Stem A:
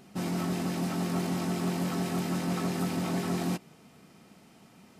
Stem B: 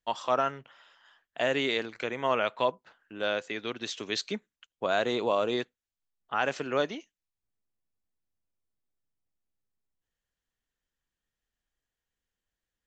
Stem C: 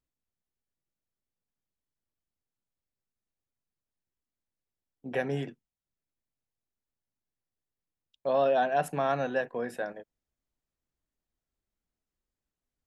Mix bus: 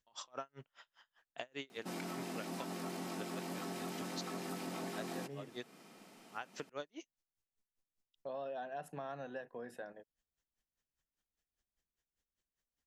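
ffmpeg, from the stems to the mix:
ffmpeg -i stem1.wav -i stem2.wav -i stem3.wav -filter_complex "[0:a]highpass=270,adelay=1700,volume=-0.5dB[link_01];[1:a]equalizer=frequency=6000:width_type=o:width=0.77:gain=5.5,alimiter=limit=-21.5dB:level=0:latency=1:release=171,aeval=exprs='val(0)*pow(10,-39*(0.5-0.5*cos(2*PI*5*n/s))/20)':channel_layout=same,volume=0.5dB[link_02];[2:a]bandreject=frequency=2300:width=12,volume=-10.5dB,asplit=2[link_03][link_04];[link_04]apad=whole_len=567509[link_05];[link_02][link_05]sidechaincompress=threshold=-48dB:ratio=8:attack=16:release=414[link_06];[link_01][link_06][link_03]amix=inputs=3:normalize=0,acompressor=threshold=-42dB:ratio=3" out.wav

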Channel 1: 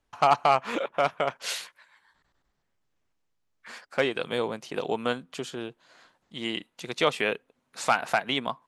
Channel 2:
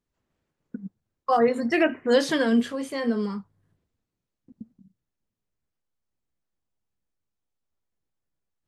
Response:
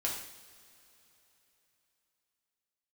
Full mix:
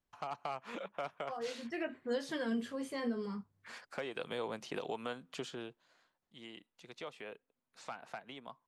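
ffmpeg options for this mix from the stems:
-filter_complex "[0:a]acrossover=split=490|1200|7000[link_01][link_02][link_03][link_04];[link_01]acompressor=threshold=-34dB:ratio=4[link_05];[link_02]acompressor=threshold=-28dB:ratio=4[link_06];[link_03]acompressor=threshold=-33dB:ratio=4[link_07];[link_04]acompressor=threshold=-59dB:ratio=4[link_08];[link_05][link_06][link_07][link_08]amix=inputs=4:normalize=0,volume=-4.5dB,afade=type=in:start_time=3.45:duration=0.43:silence=0.398107,afade=type=out:start_time=5.27:duration=0.78:silence=0.237137,asplit=2[link_09][link_10];[1:a]flanger=delay=7.9:depth=4.4:regen=-52:speed=0.49:shape=sinusoidal,volume=-4.5dB[link_11];[link_10]apad=whole_len=382390[link_12];[link_11][link_12]sidechaincompress=threshold=-51dB:ratio=4:attack=23:release=1470[link_13];[link_09][link_13]amix=inputs=2:normalize=0,alimiter=level_in=3dB:limit=-24dB:level=0:latency=1:release=312,volume=-3dB"

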